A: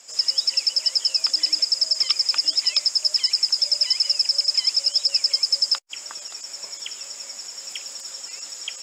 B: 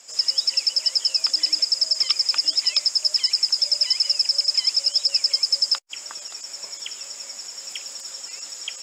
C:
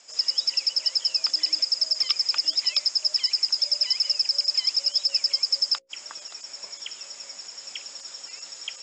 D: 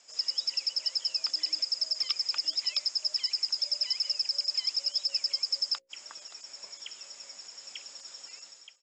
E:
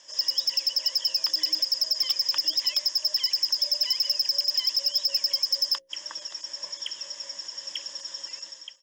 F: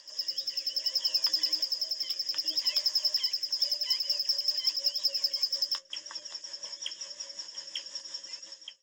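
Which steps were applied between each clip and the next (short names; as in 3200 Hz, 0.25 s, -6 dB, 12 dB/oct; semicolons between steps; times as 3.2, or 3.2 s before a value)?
nothing audible
LPF 6600 Hz 24 dB/oct; notches 60/120/180/240/300/360/420/480/540 Hz; gain -2.5 dB
ending faded out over 0.51 s; gain -6.5 dB
ripple EQ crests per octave 1.2, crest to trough 11 dB; soft clip -23 dBFS, distortion -13 dB; gain +5.5 dB
pre-echo 0.208 s -16 dB; flange 0.82 Hz, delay 8.7 ms, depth 5.8 ms, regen +53%; rotary speaker horn 0.6 Hz, later 5.5 Hz, at 3.18; gain +2 dB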